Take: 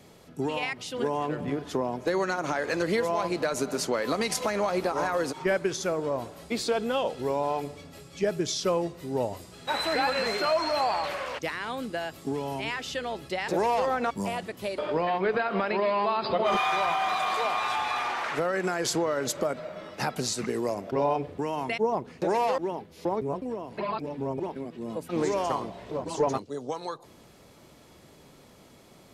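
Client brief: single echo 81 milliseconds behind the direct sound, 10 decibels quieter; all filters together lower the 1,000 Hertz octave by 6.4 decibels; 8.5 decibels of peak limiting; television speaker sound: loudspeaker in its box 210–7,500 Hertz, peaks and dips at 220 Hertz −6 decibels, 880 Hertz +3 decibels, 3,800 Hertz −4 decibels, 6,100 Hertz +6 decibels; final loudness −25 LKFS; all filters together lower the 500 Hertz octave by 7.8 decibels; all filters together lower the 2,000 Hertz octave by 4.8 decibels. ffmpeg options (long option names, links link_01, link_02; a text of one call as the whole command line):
ffmpeg -i in.wav -af "equalizer=frequency=500:width_type=o:gain=-8,equalizer=frequency=1000:width_type=o:gain=-6.5,equalizer=frequency=2000:width_type=o:gain=-3.5,alimiter=level_in=1.5dB:limit=-24dB:level=0:latency=1,volume=-1.5dB,highpass=frequency=210:width=0.5412,highpass=frequency=210:width=1.3066,equalizer=frequency=220:width_type=q:width=4:gain=-6,equalizer=frequency=880:width_type=q:width=4:gain=3,equalizer=frequency=3800:width_type=q:width=4:gain=-4,equalizer=frequency=6100:width_type=q:width=4:gain=6,lowpass=frequency=7500:width=0.5412,lowpass=frequency=7500:width=1.3066,aecho=1:1:81:0.316,volume=11dB" out.wav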